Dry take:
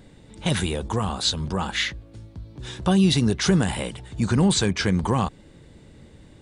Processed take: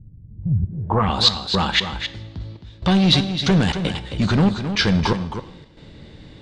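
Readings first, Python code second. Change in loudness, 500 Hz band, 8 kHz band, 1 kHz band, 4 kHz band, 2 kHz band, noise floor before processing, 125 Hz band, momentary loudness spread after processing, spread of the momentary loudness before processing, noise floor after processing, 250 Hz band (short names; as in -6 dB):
+3.5 dB, +1.5 dB, -6.0 dB, +5.0 dB, +6.5 dB, +4.0 dB, -50 dBFS, +3.0 dB, 15 LU, 17 LU, -45 dBFS, +2.5 dB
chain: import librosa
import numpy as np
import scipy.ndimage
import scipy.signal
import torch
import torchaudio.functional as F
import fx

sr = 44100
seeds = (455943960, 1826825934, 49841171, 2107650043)

p1 = fx.rider(x, sr, range_db=4, speed_s=0.5)
p2 = x + (p1 * 10.0 ** (-1.5 / 20.0))
p3 = fx.step_gate(p2, sr, bpm=117, pattern='xxxxx..xxx..xx.', floor_db=-24.0, edge_ms=4.5)
p4 = np.clip(10.0 ** (13.0 / 20.0) * p3, -1.0, 1.0) / 10.0 ** (13.0 / 20.0)
p5 = fx.rev_double_slope(p4, sr, seeds[0], early_s=0.75, late_s=2.4, knee_db=-18, drr_db=13.0)
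p6 = fx.filter_sweep_lowpass(p5, sr, from_hz=110.0, to_hz=4200.0, start_s=0.64, end_s=1.16, q=1.9)
y = p6 + fx.echo_single(p6, sr, ms=266, db=-9.0, dry=0)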